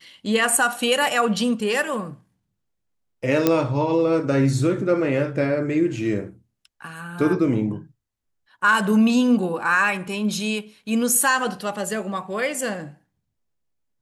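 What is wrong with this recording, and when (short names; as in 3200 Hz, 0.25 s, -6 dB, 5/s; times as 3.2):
3.47 pop -4 dBFS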